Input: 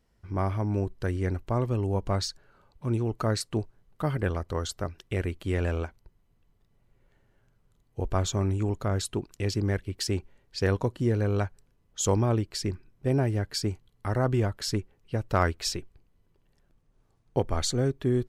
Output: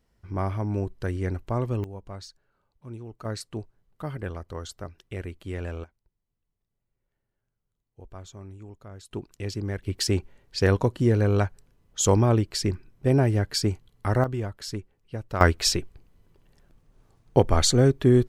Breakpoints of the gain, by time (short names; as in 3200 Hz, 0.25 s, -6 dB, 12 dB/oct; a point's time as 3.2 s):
0 dB
from 1.84 s -12 dB
from 3.25 s -5.5 dB
from 5.84 s -16 dB
from 9.11 s -3.5 dB
from 9.83 s +4.5 dB
from 14.24 s -4.5 dB
from 15.41 s +7.5 dB